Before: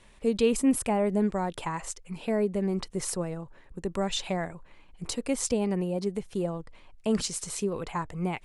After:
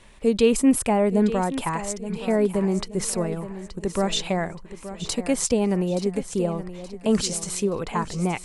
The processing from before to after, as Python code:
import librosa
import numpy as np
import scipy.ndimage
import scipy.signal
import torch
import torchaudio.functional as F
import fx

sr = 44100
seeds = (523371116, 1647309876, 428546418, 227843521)

y = fx.echo_feedback(x, sr, ms=874, feedback_pct=38, wet_db=-13)
y = y * librosa.db_to_amplitude(5.5)